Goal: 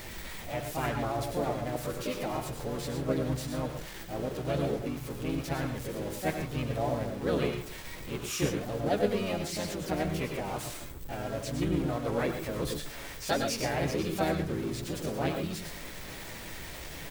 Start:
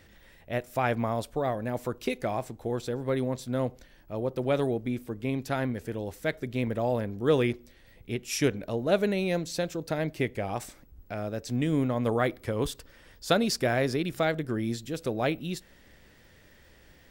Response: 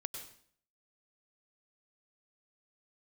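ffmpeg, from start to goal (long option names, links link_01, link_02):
-filter_complex "[0:a]aeval=exprs='val(0)+0.5*0.0282*sgn(val(0))':channel_layout=same,flanger=delay=6:depth=1.4:regen=46:speed=0.49:shape=triangular[link_01];[1:a]atrim=start_sample=2205,afade=type=out:start_time=0.19:duration=0.01,atrim=end_sample=8820[link_02];[link_01][link_02]afir=irnorm=-1:irlink=0,asplit=3[link_03][link_04][link_05];[link_04]asetrate=22050,aresample=44100,atempo=2,volume=-6dB[link_06];[link_05]asetrate=52444,aresample=44100,atempo=0.840896,volume=-2dB[link_07];[link_03][link_06][link_07]amix=inputs=3:normalize=0,volume=-2.5dB"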